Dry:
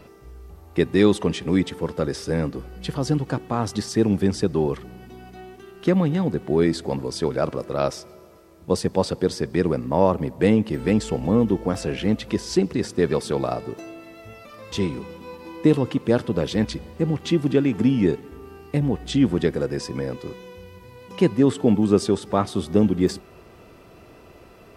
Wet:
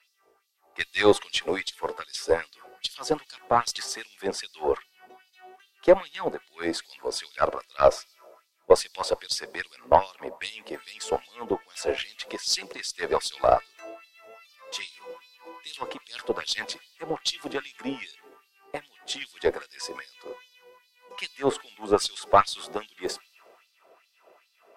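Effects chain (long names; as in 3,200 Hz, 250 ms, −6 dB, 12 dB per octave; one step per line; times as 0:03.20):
auto-filter high-pass sine 2.5 Hz 520–4,400 Hz
harmonic generator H 6 −25 dB, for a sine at −4 dBFS
multiband upward and downward expander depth 40%
level −1 dB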